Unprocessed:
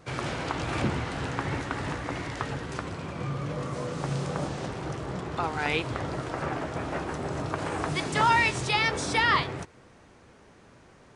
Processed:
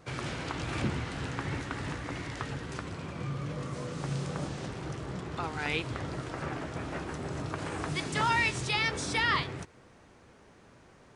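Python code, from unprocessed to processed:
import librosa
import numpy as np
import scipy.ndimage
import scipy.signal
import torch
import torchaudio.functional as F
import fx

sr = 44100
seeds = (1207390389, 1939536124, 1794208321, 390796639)

y = fx.dynamic_eq(x, sr, hz=730.0, q=0.76, threshold_db=-41.0, ratio=4.0, max_db=-5)
y = y * librosa.db_to_amplitude(-2.5)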